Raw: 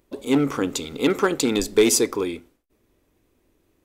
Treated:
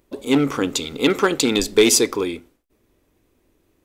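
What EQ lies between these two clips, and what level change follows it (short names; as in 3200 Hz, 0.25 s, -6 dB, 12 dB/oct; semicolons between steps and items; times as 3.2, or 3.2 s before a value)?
dynamic EQ 3400 Hz, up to +5 dB, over -37 dBFS, Q 0.85; +2.0 dB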